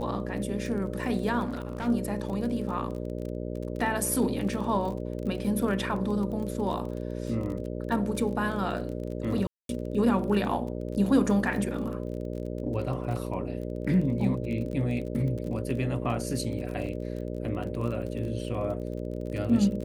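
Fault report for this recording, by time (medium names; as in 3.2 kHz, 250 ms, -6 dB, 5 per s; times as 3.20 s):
buzz 60 Hz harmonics 10 -34 dBFS
crackle 30 per s -35 dBFS
1.44–1.88 s: clipped -28 dBFS
9.47–9.69 s: dropout 222 ms
16.86 s: dropout 3 ms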